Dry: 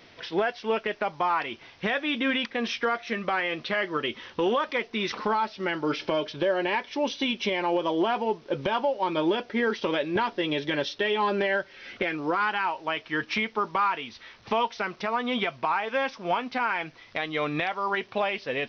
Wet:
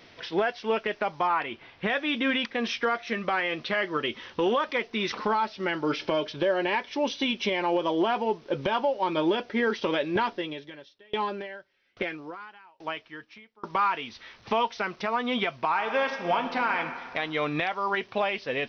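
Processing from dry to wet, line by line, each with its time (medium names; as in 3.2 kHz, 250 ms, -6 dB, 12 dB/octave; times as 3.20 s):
1.27–1.90 s: low-pass 3.4 kHz
10.30–13.70 s: sawtooth tremolo in dB decaying 1.2 Hz, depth 32 dB
15.69–16.80 s: reverb throw, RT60 1.8 s, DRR 5.5 dB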